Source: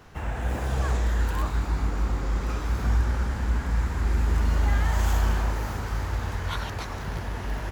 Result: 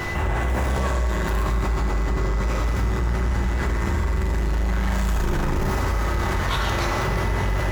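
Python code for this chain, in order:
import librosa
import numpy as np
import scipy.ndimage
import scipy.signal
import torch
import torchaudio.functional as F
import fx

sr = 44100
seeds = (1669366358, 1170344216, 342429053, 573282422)

y = fx.octave_divider(x, sr, octaves=1, level_db=2.0, at=(5.15, 5.71))
y = y + 10.0 ** (-52.0 / 20.0) * np.sin(2.0 * np.pi * 2000.0 * np.arange(len(y)) / sr)
y = 10.0 ** (-27.0 / 20.0) * np.tanh(y / 10.0 ** (-27.0 / 20.0))
y = fx.rev_fdn(y, sr, rt60_s=2.0, lf_ratio=0.7, hf_ratio=0.55, size_ms=16.0, drr_db=0.0)
y = fx.env_flatten(y, sr, amount_pct=70)
y = y * librosa.db_to_amplitude(3.5)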